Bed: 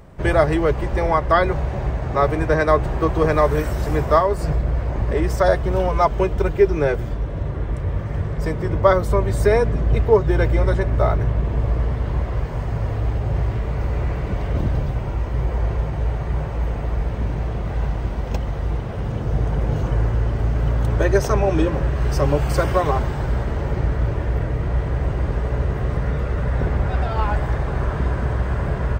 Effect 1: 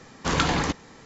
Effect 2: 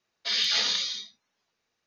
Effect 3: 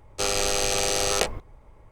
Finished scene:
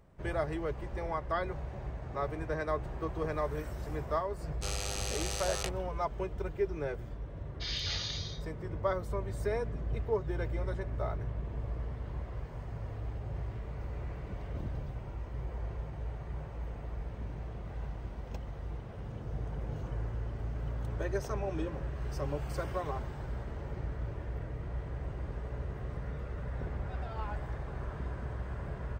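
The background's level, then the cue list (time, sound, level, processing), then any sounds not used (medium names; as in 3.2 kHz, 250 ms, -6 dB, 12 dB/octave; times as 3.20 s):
bed -17 dB
4.43 s: add 3 -12.5 dB + bass shelf 310 Hz -11.5 dB
7.35 s: add 2 -11.5 dB
not used: 1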